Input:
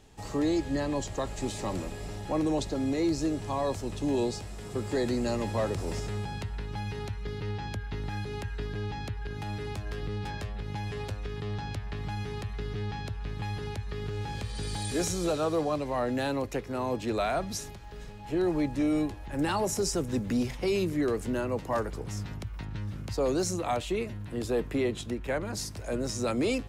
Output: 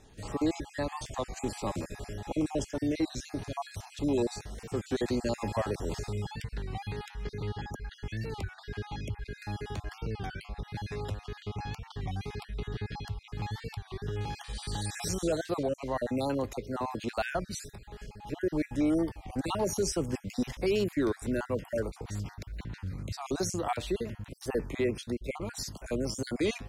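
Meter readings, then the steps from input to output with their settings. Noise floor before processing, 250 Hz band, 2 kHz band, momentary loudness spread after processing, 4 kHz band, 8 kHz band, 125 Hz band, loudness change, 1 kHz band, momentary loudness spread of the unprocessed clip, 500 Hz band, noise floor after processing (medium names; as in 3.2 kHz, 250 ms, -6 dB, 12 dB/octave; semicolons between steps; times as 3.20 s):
-41 dBFS, -2.5 dB, -2.0 dB, 10 LU, -2.0 dB, -2.5 dB, -2.5 dB, -2.5 dB, -3.0 dB, 9 LU, -2.5 dB, -54 dBFS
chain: random holes in the spectrogram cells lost 38%; warped record 33 1/3 rpm, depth 160 cents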